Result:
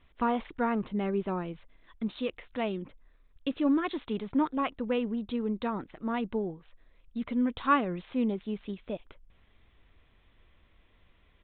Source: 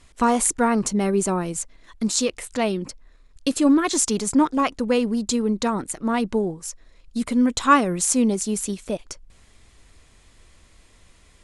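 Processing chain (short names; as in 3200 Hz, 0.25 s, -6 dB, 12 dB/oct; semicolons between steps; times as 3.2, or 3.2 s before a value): downsampling 8000 Hz; gain -9 dB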